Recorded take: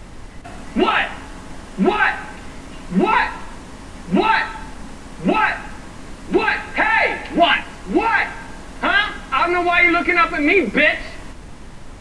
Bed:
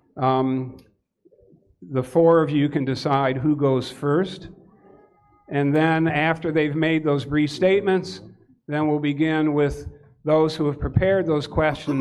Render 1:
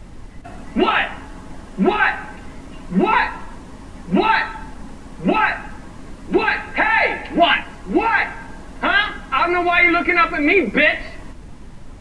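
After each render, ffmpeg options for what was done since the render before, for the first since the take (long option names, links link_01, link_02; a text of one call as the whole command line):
ffmpeg -i in.wav -af "afftdn=noise_reduction=6:noise_floor=-37" out.wav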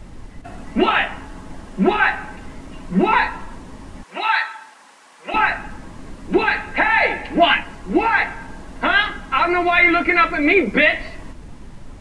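ffmpeg -i in.wav -filter_complex "[0:a]asettb=1/sr,asplit=3[link_01][link_02][link_03];[link_01]atrim=end=4.034[link_04];[link_02]atrim=start=4.03:end=5.34,asetpts=PTS-STARTPTS,afade=type=in:duration=0.004:curve=qsin,afade=type=out:start_time=1.306:duration=0.004:curve=qsin,highpass=960[link_05];[link_03]atrim=start=5.336[link_06];[link_04][link_05]acrossfade=duration=0.004:curve1=hsin:curve2=qsin[link_07];[link_07][link_06]acrossfade=duration=0.004:curve1=qsin:curve2=hsin" out.wav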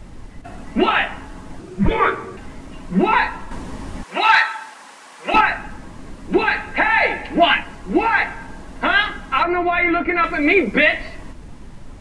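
ffmpeg -i in.wav -filter_complex "[0:a]asettb=1/sr,asplit=3[link_01][link_02][link_03];[link_01]atrim=end=1.594[link_04];[link_02]atrim=start=1.59:end=2.37,asetpts=PTS-STARTPTS,afade=type=in:duration=0.004:curve=qsin,afade=type=out:start_time=0.776:duration=0.004:curve=qsin,afreqshift=-390[link_05];[link_03]atrim=start=2.366[link_06];[link_04][link_05]acrossfade=duration=0.004:curve1=hsin:curve2=qsin[link_07];[link_07][link_06]acrossfade=duration=0.004:curve1=qsin:curve2=hsin,asettb=1/sr,asplit=3[link_08][link_09][link_10];[link_08]atrim=end=3.514[link_11];[link_09]atrim=start=3.51:end=5.41,asetpts=PTS-STARTPTS,afade=type=in:duration=0.004:curve=qsin,afade=type=out:start_time=1.896:duration=0.004:curve=qsin,acontrast=54[link_12];[link_10]atrim=start=5.406[link_13];[link_11][link_12]acrossfade=duration=0.004:curve1=hsin:curve2=qsin[link_14];[link_14][link_13]acrossfade=duration=0.004:curve1=qsin:curve2=hsin,asettb=1/sr,asplit=3[link_15][link_16][link_17];[link_15]atrim=end=9.434[link_18];[link_16]atrim=start=9.43:end=10.24,asetpts=PTS-STARTPTS,afade=type=in:duration=0.004:curve=qsin,afade=type=out:start_time=0.806:duration=0.004:curve=qsin,lowpass=frequency=1400:poles=1[link_19];[link_17]atrim=start=10.236[link_20];[link_18][link_19]acrossfade=duration=0.004:curve1=hsin:curve2=qsin[link_21];[link_21][link_20]acrossfade=duration=0.004:curve1=qsin:curve2=hsin" out.wav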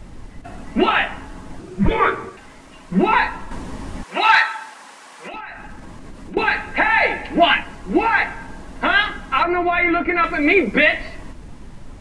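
ffmpeg -i in.wav -filter_complex "[0:a]asettb=1/sr,asplit=3[link_01][link_02][link_03];[link_01]atrim=end=2.294[link_04];[link_02]atrim=start=2.29:end=2.92,asetpts=PTS-STARTPTS,afade=type=in:duration=0.004:curve=qsin,afade=type=out:start_time=0.626:duration=0.004:curve=qsin,lowshelf=frequency=420:gain=-11.5[link_05];[link_03]atrim=start=2.916[link_06];[link_04][link_05]acrossfade=duration=0.004:curve1=hsin:curve2=qsin[link_07];[link_07][link_06]acrossfade=duration=0.004:curve1=qsin:curve2=hsin,asettb=1/sr,asplit=3[link_08][link_09][link_10];[link_08]atrim=end=5.274[link_11];[link_09]atrim=start=5.27:end=6.37,asetpts=PTS-STARTPTS,afade=type=in:duration=0.004:curve=qsin,afade=type=out:start_time=1.096:duration=0.004:curve=qsin,acompressor=threshold=-31dB:ratio=6:attack=3.2:release=140:knee=1:detection=peak[link_12];[link_10]atrim=start=6.366[link_13];[link_11][link_12]acrossfade=duration=0.004:curve1=hsin:curve2=qsin[link_14];[link_14][link_13]acrossfade=duration=0.004:curve1=qsin:curve2=hsin" out.wav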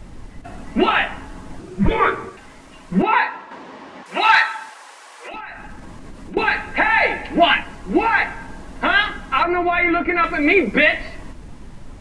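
ffmpeg -i in.wav -filter_complex "[0:a]asettb=1/sr,asplit=3[link_01][link_02][link_03];[link_01]atrim=end=3.024[link_04];[link_02]atrim=start=3.02:end=4.06,asetpts=PTS-STARTPTS,afade=type=in:duration=0.004:curve=qsin,afade=type=out:start_time=1.036:duration=0.004:curve=qsin,highpass=380,lowpass=3800[link_05];[link_03]atrim=start=4.056[link_06];[link_04][link_05]acrossfade=duration=0.004:curve1=hsin:curve2=qsin[link_07];[link_07][link_06]acrossfade=duration=0.004:curve1=qsin:curve2=hsin,asettb=1/sr,asplit=3[link_08][link_09][link_10];[link_08]atrim=end=4.694[link_11];[link_09]atrim=start=4.69:end=5.31,asetpts=PTS-STARTPTS,afade=type=in:duration=0.004:curve=qsin,afade=type=out:start_time=0.616:duration=0.004:curve=qsin,highpass=frequency=360:width=0.5412,highpass=frequency=360:width=1.3066[link_12];[link_10]atrim=start=5.306[link_13];[link_11][link_12]acrossfade=duration=0.004:curve1=hsin:curve2=qsin[link_14];[link_14][link_13]acrossfade=duration=0.004:curve1=qsin:curve2=hsin" out.wav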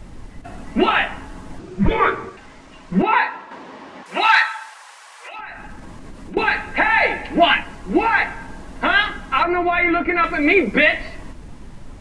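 ffmpeg -i in.wav -filter_complex "[0:a]asettb=1/sr,asplit=3[link_01][link_02][link_03];[link_01]atrim=end=1.584[link_04];[link_02]atrim=start=1.58:end=3.24,asetpts=PTS-STARTPTS,afade=type=in:duration=0.004:curve=qsin,afade=type=out:start_time=1.656:duration=0.004:curve=qsin,lowpass=7400[link_05];[link_03]atrim=start=3.236[link_06];[link_04][link_05]acrossfade=duration=0.004:curve1=hsin:curve2=qsin[link_07];[link_07][link_06]acrossfade=duration=0.004:curve1=qsin:curve2=hsin,asettb=1/sr,asplit=3[link_08][link_09][link_10];[link_08]atrim=end=4.264[link_11];[link_09]atrim=start=4.26:end=5.39,asetpts=PTS-STARTPTS,afade=type=in:duration=0.004:curve=qsin,afade=type=out:start_time=1.126:duration=0.004:curve=qsin,highpass=740[link_12];[link_10]atrim=start=5.386[link_13];[link_11][link_12]acrossfade=duration=0.004:curve1=hsin:curve2=qsin[link_14];[link_14][link_13]acrossfade=duration=0.004:curve1=qsin:curve2=hsin" out.wav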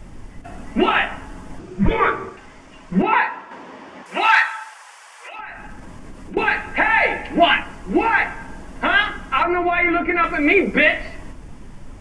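ffmpeg -i in.wav -af "equalizer=frequency=4000:width=6.2:gain=-9.5,bandreject=frequency=54.45:width_type=h:width=4,bandreject=frequency=108.9:width_type=h:width=4,bandreject=frequency=163.35:width_type=h:width=4,bandreject=frequency=217.8:width_type=h:width=4,bandreject=frequency=272.25:width_type=h:width=4,bandreject=frequency=326.7:width_type=h:width=4,bandreject=frequency=381.15:width_type=h:width=4,bandreject=frequency=435.6:width_type=h:width=4,bandreject=frequency=490.05:width_type=h:width=4,bandreject=frequency=544.5:width_type=h:width=4,bandreject=frequency=598.95:width_type=h:width=4,bandreject=frequency=653.4:width_type=h:width=4,bandreject=frequency=707.85:width_type=h:width=4,bandreject=frequency=762.3:width_type=h:width=4,bandreject=frequency=816.75:width_type=h:width=4,bandreject=frequency=871.2:width_type=h:width=4,bandreject=frequency=925.65:width_type=h:width=4,bandreject=frequency=980.1:width_type=h:width=4,bandreject=frequency=1034.55:width_type=h:width=4,bandreject=frequency=1089:width_type=h:width=4,bandreject=frequency=1143.45:width_type=h:width=4,bandreject=frequency=1197.9:width_type=h:width=4,bandreject=frequency=1252.35:width_type=h:width=4,bandreject=frequency=1306.8:width_type=h:width=4,bandreject=frequency=1361.25:width_type=h:width=4,bandreject=frequency=1415.7:width_type=h:width=4,bandreject=frequency=1470.15:width_type=h:width=4,bandreject=frequency=1524.6:width_type=h:width=4" out.wav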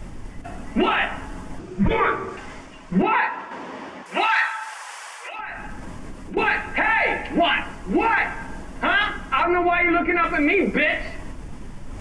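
ffmpeg -i in.wav -af "alimiter=limit=-11dB:level=0:latency=1:release=21,areverse,acompressor=mode=upward:threshold=-28dB:ratio=2.5,areverse" out.wav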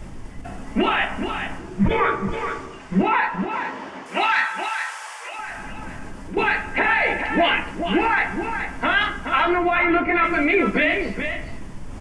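ffmpeg -i in.wav -filter_complex "[0:a]asplit=2[link_01][link_02];[link_02]adelay=15,volume=-12dB[link_03];[link_01][link_03]amix=inputs=2:normalize=0,aecho=1:1:424:0.422" out.wav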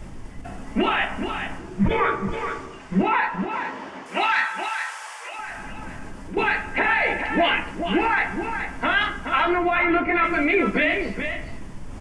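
ffmpeg -i in.wav -af "volume=-1.5dB" out.wav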